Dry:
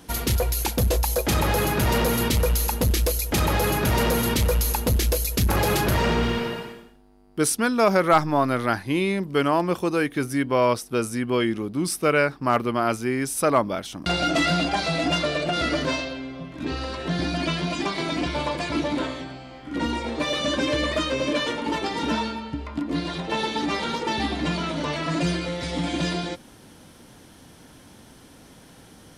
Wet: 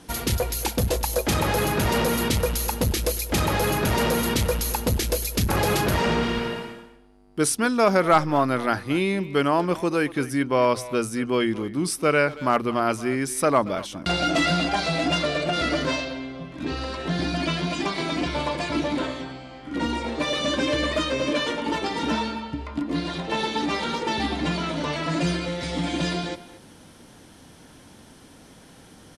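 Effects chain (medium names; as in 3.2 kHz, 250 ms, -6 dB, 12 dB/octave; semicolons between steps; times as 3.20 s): low-pass 12 kHz 24 dB/octave; hum notches 60/120 Hz; speakerphone echo 230 ms, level -15 dB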